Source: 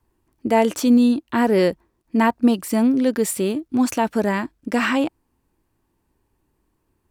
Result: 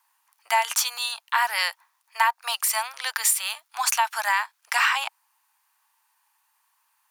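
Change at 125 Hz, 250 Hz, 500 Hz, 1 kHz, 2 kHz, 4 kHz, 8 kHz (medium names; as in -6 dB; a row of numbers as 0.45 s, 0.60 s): under -40 dB, under -40 dB, -19.0 dB, +1.0 dB, +4.0 dB, +6.5 dB, +7.0 dB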